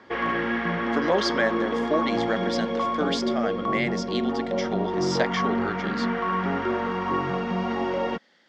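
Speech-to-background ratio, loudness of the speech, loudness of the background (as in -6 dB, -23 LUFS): -3.0 dB, -29.5 LUFS, -26.5 LUFS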